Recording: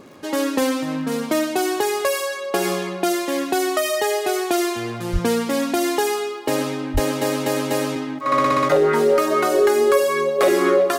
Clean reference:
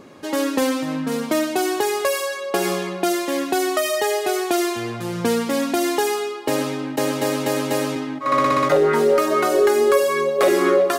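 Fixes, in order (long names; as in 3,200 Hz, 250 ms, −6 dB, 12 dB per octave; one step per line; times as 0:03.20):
click removal
0:05.12–0:05.24: high-pass filter 140 Hz 24 dB per octave
0:06.93–0:07.05: high-pass filter 140 Hz 24 dB per octave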